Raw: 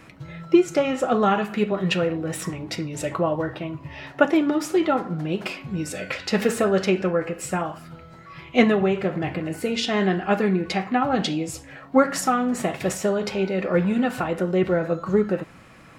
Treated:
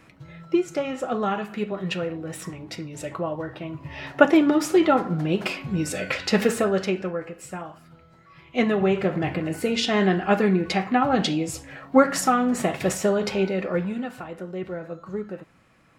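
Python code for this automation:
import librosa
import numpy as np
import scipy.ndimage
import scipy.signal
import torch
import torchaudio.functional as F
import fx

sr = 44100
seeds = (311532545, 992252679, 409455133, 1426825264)

y = fx.gain(x, sr, db=fx.line((3.47, -5.5), (4.06, 2.5), (6.26, 2.5), (7.38, -9.0), (8.43, -9.0), (8.91, 1.0), (13.42, 1.0), (14.18, -11.0)))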